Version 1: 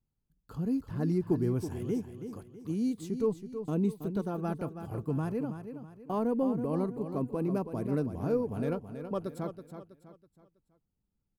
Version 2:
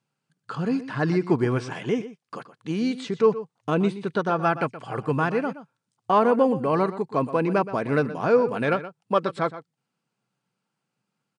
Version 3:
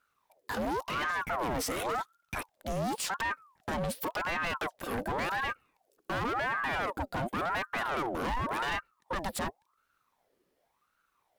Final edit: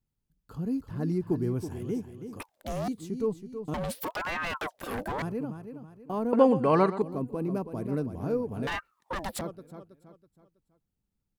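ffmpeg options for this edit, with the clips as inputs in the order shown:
-filter_complex "[2:a]asplit=3[s0][s1][s2];[0:a]asplit=5[s3][s4][s5][s6][s7];[s3]atrim=end=2.402[s8];[s0]atrim=start=2.398:end=2.882[s9];[s4]atrim=start=2.878:end=3.742[s10];[s1]atrim=start=3.738:end=5.222[s11];[s5]atrim=start=5.218:end=6.332[s12];[1:a]atrim=start=6.328:end=7.022[s13];[s6]atrim=start=7.018:end=8.672[s14];[s2]atrim=start=8.668:end=9.412[s15];[s7]atrim=start=9.408[s16];[s8][s9]acrossfade=d=0.004:c1=hsin:c2=hsin[s17];[s17][s10]acrossfade=d=0.004:c1=hsin:c2=hsin[s18];[s18][s11]acrossfade=d=0.004:c1=hsin:c2=hsin[s19];[s19][s12]acrossfade=d=0.004:c1=hsin:c2=hsin[s20];[s20][s13]acrossfade=d=0.004:c1=hsin:c2=hsin[s21];[s21][s14]acrossfade=d=0.004:c1=hsin:c2=hsin[s22];[s22][s15]acrossfade=d=0.004:c1=hsin:c2=hsin[s23];[s23][s16]acrossfade=d=0.004:c1=hsin:c2=hsin"

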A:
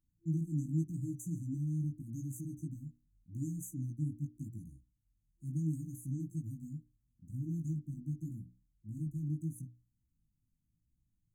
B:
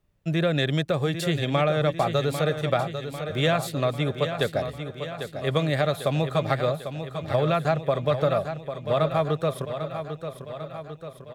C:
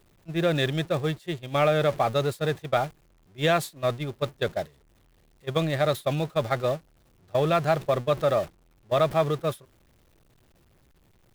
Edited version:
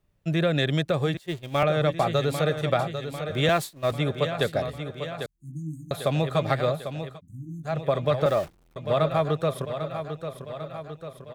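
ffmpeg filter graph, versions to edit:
-filter_complex "[2:a]asplit=3[s0][s1][s2];[0:a]asplit=2[s3][s4];[1:a]asplit=6[s5][s6][s7][s8][s9][s10];[s5]atrim=end=1.172[s11];[s0]atrim=start=1.168:end=1.632[s12];[s6]atrim=start=1.628:end=3.492[s13];[s1]atrim=start=3.488:end=3.922[s14];[s7]atrim=start=3.918:end=5.262[s15];[s3]atrim=start=5.258:end=5.912[s16];[s8]atrim=start=5.908:end=7.21[s17];[s4]atrim=start=7.05:end=7.79[s18];[s9]atrim=start=7.63:end=8.262[s19];[s2]atrim=start=8.258:end=8.762[s20];[s10]atrim=start=8.758[s21];[s11][s12]acrossfade=d=0.004:c1=hsin:c2=hsin[s22];[s22][s13]acrossfade=d=0.004:c1=hsin:c2=hsin[s23];[s23][s14]acrossfade=d=0.004:c1=hsin:c2=hsin[s24];[s24][s15]acrossfade=d=0.004:c1=hsin:c2=hsin[s25];[s25][s16]acrossfade=d=0.004:c1=hsin:c2=hsin[s26];[s26][s17]acrossfade=d=0.004:c1=hsin:c2=hsin[s27];[s27][s18]acrossfade=d=0.16:c1=tri:c2=tri[s28];[s28][s19]acrossfade=d=0.16:c1=tri:c2=tri[s29];[s29][s20]acrossfade=d=0.004:c1=hsin:c2=hsin[s30];[s30][s21]acrossfade=d=0.004:c1=hsin:c2=hsin"

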